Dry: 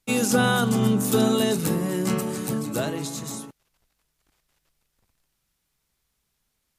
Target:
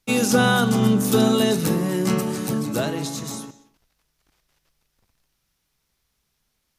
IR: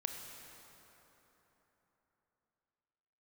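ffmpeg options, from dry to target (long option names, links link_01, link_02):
-filter_complex "[0:a]asplit=2[link_01][link_02];[link_02]highshelf=frequency=7700:width_type=q:width=3:gain=-8[link_03];[1:a]atrim=start_sample=2205,afade=type=out:start_time=0.42:duration=0.01,atrim=end_sample=18963,asetrate=61740,aresample=44100[link_04];[link_03][link_04]afir=irnorm=-1:irlink=0,volume=-4.5dB[link_05];[link_01][link_05]amix=inputs=2:normalize=0"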